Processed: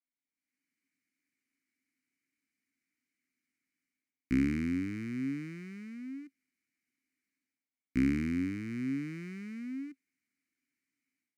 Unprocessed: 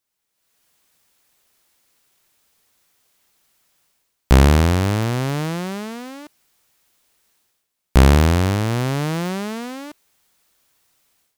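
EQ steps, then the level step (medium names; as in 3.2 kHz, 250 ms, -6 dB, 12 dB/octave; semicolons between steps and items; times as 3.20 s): vowel filter i; treble shelf 5.3 kHz +4.5 dB; static phaser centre 1.4 kHz, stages 4; 0.0 dB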